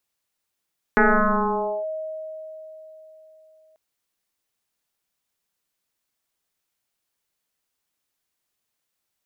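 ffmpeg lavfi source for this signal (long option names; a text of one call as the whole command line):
ffmpeg -f lavfi -i "aevalsrc='0.251*pow(10,-3*t/3.93)*sin(2*PI*630*t+5.6*clip(1-t/0.88,0,1)*sin(2*PI*0.34*630*t))':duration=2.79:sample_rate=44100" out.wav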